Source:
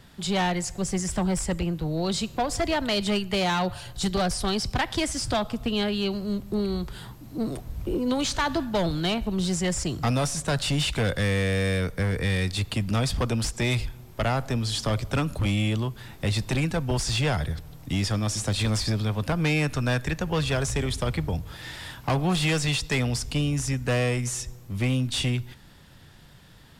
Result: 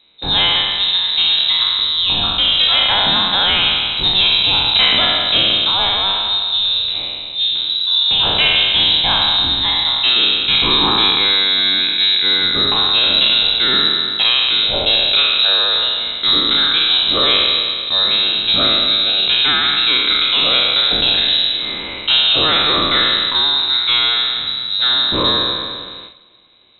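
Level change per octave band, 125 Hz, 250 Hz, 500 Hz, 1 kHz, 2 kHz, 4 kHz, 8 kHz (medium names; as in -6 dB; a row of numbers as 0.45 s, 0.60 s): -8.0 dB, -2.5 dB, +2.0 dB, +9.5 dB, +12.0 dB, +23.0 dB, under -40 dB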